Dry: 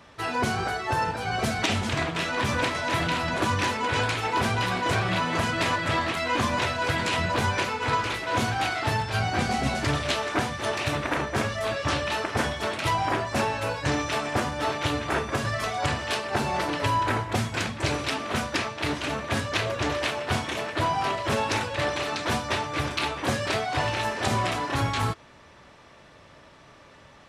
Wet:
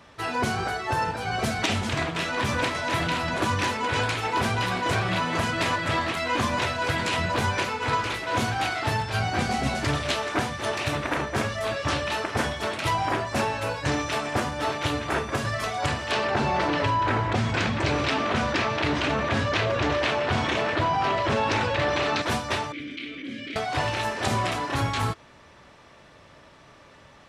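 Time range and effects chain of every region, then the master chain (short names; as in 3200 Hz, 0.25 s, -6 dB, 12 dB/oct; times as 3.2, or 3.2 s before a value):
16.11–22.22 air absorption 100 m + fast leveller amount 70%
22.72–23.56 vowel filter i + bell 510 Hz +4.5 dB 0.31 oct + fast leveller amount 70%
whole clip: dry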